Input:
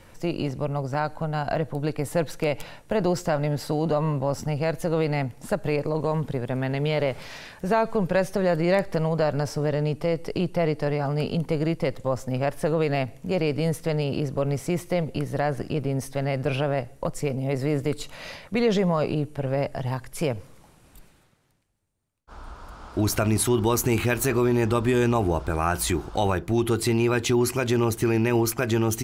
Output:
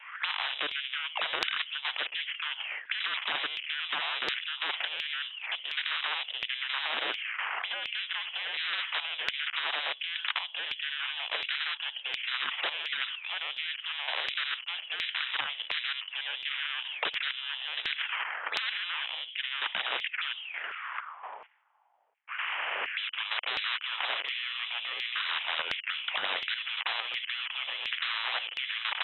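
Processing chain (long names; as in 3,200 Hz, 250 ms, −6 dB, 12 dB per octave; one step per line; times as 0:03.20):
gap after every zero crossing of 0.2 ms
brickwall limiter −17 dBFS, peak gain reduction 7 dB
envelope filter 730–2,900 Hz, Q 16, down, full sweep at −27 dBFS
gate pattern ".xx..xx.x..." 65 BPM −12 dB
mid-hump overdrive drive 32 dB, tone 1,900 Hz, clips at −16 dBFS
voice inversion scrambler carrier 3,700 Hz
auto-filter high-pass saw down 1.4 Hz 420–2,500 Hz
every bin compressed towards the loudest bin 10 to 1
level +3 dB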